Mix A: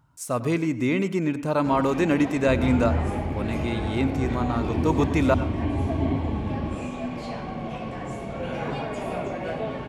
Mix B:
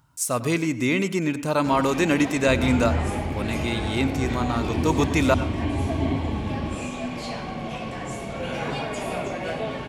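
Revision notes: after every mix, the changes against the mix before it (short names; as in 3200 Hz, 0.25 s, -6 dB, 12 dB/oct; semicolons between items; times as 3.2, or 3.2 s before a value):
master: add high shelf 2400 Hz +10.5 dB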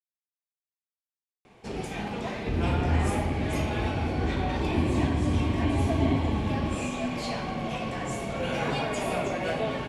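speech: muted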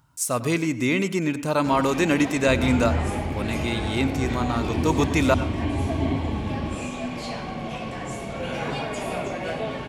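speech: unmuted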